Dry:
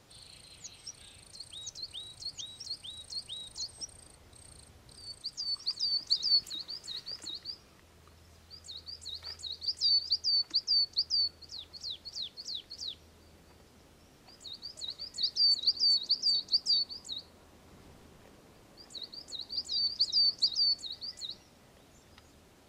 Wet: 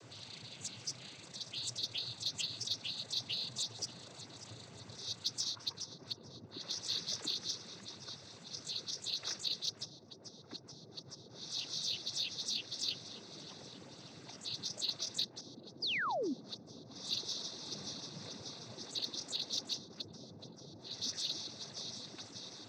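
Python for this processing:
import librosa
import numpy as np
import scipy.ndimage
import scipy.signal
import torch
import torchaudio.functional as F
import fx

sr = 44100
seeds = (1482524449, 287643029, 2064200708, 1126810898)

p1 = fx.low_shelf(x, sr, hz=500.0, db=4.0)
p2 = p1 + fx.echo_feedback(p1, sr, ms=586, feedback_pct=60, wet_db=-18, dry=0)
p3 = fx.env_lowpass_down(p2, sr, base_hz=590.0, full_db=-27.0)
p4 = fx.noise_vocoder(p3, sr, seeds[0], bands=16)
p5 = 10.0 ** (-35.5 / 20.0) * np.tanh(p4 / 10.0 ** (-35.5 / 20.0))
p6 = p4 + F.gain(torch.from_numpy(p5), -8.0).numpy()
p7 = fx.spec_paint(p6, sr, seeds[1], shape='fall', start_s=15.82, length_s=0.52, low_hz=230.0, high_hz=5200.0, level_db=-37.0)
y = F.gain(torch.from_numpy(p7), 1.5).numpy()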